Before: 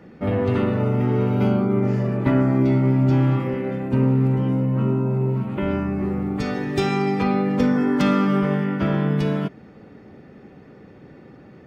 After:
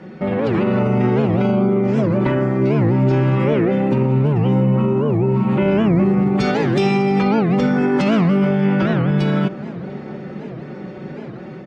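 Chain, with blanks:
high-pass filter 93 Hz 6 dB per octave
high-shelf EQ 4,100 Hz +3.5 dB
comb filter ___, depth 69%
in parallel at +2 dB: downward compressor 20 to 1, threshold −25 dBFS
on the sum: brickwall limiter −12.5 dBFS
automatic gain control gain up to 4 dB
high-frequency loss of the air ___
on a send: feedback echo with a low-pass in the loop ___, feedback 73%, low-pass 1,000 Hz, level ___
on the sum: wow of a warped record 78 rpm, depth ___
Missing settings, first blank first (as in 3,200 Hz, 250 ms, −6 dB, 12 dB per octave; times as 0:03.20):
5.4 ms, 69 metres, 696 ms, −15.5 dB, 250 cents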